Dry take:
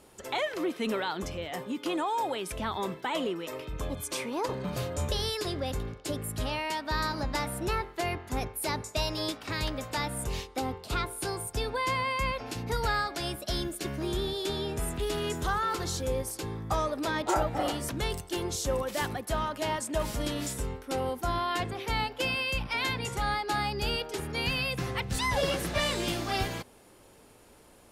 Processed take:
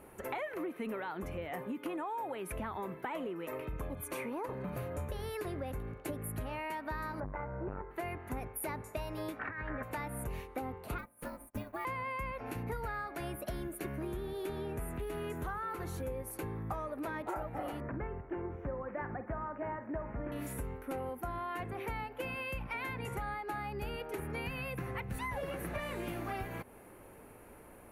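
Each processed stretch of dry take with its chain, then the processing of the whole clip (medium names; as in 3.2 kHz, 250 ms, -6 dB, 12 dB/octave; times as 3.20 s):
7.20–7.91 s: low-pass 1.7 kHz 24 dB/octave + comb 2 ms, depth 67% + transformer saturation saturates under 360 Hz
9.39–9.83 s: resonant low-pass 1.7 kHz, resonance Q 4.5 + compressor with a negative ratio -36 dBFS
10.98–11.85 s: ring modulator 160 Hz + short-mantissa float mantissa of 2-bit + upward expansion 2.5:1, over -52 dBFS
17.80–20.32 s: inverse Chebyshev low-pass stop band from 3.9 kHz + doubling 49 ms -12.5 dB
whole clip: high-order bell 5.1 kHz -15 dB; band-stop 5.1 kHz, Q 9.1; compression 6:1, threshold -39 dBFS; trim +2.5 dB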